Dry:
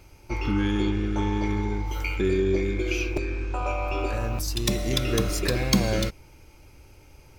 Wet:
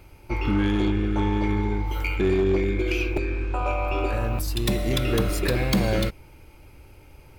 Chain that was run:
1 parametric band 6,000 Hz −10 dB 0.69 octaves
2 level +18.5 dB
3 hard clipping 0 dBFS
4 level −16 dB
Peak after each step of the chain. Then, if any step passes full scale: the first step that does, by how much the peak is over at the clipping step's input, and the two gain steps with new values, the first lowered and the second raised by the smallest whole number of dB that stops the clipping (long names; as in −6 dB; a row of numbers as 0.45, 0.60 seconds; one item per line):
−9.5, +9.0, 0.0, −16.0 dBFS
step 2, 9.0 dB
step 2 +9.5 dB, step 4 −7 dB